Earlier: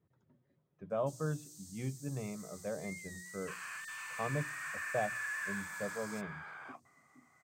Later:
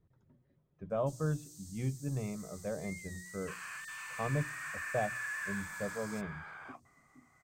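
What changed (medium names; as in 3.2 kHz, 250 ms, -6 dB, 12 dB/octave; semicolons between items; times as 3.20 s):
speech: add bass shelf 400 Hz +3 dB; master: remove high-pass 110 Hz 12 dB/octave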